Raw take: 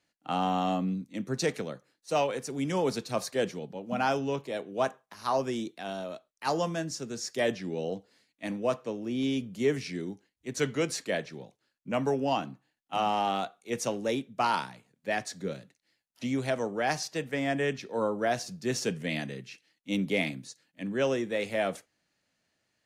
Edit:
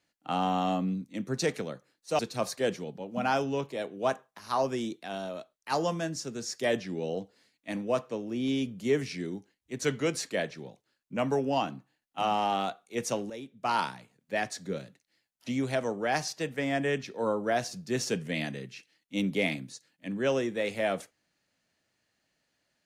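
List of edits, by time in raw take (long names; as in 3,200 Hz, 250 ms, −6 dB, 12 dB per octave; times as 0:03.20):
0:02.19–0:02.94: remove
0:14.05–0:14.51: fade in quadratic, from −12.5 dB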